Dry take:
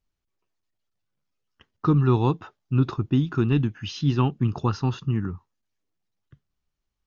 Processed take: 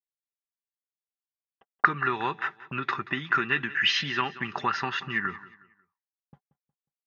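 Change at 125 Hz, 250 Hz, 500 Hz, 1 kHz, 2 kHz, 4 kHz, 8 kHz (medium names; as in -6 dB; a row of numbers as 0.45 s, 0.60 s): -19.0 dB, -13.0 dB, -8.0 dB, +4.5 dB, +16.5 dB, +9.5 dB, no reading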